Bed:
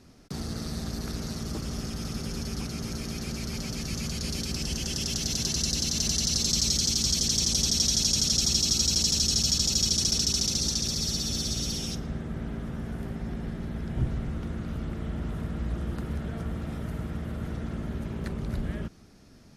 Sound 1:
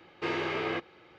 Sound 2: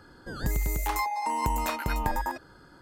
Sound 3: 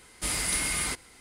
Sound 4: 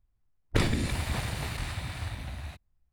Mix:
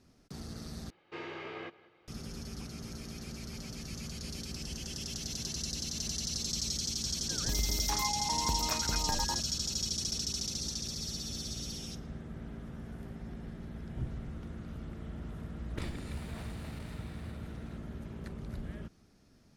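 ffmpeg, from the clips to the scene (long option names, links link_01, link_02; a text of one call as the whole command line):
ffmpeg -i bed.wav -i cue0.wav -i cue1.wav -i cue2.wav -i cue3.wav -filter_complex "[0:a]volume=-9.5dB[link_01];[1:a]asplit=2[link_02][link_03];[link_03]adelay=188,lowpass=frequency=4700:poles=1,volume=-19.5dB,asplit=2[link_04][link_05];[link_05]adelay=188,lowpass=frequency=4700:poles=1,volume=0.4,asplit=2[link_06][link_07];[link_07]adelay=188,lowpass=frequency=4700:poles=1,volume=0.4[link_08];[link_02][link_04][link_06][link_08]amix=inputs=4:normalize=0[link_09];[link_01]asplit=2[link_10][link_11];[link_10]atrim=end=0.904[link_12];[link_09]atrim=end=1.18,asetpts=PTS-STARTPTS,volume=-11dB[link_13];[link_11]atrim=start=2.076[link_14];[2:a]atrim=end=2.81,asetpts=PTS-STARTPTS,volume=-6.5dB,afade=type=in:duration=0.004:curve=hsin,afade=type=out:start_time=2.806:duration=0.004:curve=hsin,adelay=7030[link_15];[4:a]atrim=end=2.92,asetpts=PTS-STARTPTS,volume=-15dB,afade=type=in:duration=0.004:curve=hsin,afade=type=out:start_time=2.916:duration=0.004:curve=hsin,adelay=15220[link_16];[link_12][link_13]acrossfade=duration=0.004:curve1=hsin:curve2=hsin[link_17];[link_17][link_14]acrossfade=duration=0.004:curve1=hsin:curve2=hsin[link_18];[link_18][link_15][link_16]amix=inputs=3:normalize=0" out.wav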